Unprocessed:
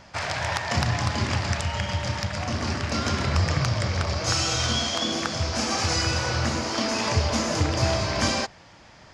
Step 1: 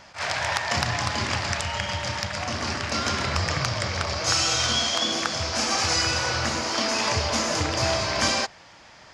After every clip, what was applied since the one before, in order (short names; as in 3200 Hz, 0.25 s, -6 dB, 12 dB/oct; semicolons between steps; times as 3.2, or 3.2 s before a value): low shelf 400 Hz -9 dB; attack slew limiter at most 240 dB/s; gain +3 dB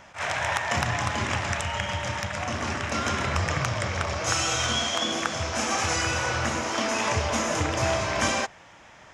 bell 4600 Hz -13.5 dB 0.41 oct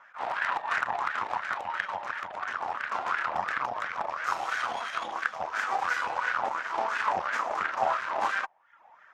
reverb removal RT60 0.69 s; added harmonics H 8 -9 dB, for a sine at -8 dBFS; wah 2.9 Hz 780–1600 Hz, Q 4.8; gain +4.5 dB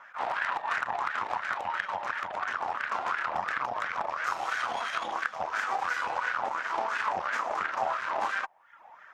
compressor 2.5:1, threshold -33 dBFS, peak gain reduction 8 dB; gain +4 dB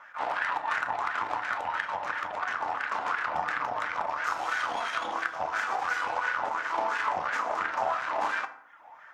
FDN reverb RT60 0.71 s, low-frequency decay 1.1×, high-frequency decay 0.55×, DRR 7 dB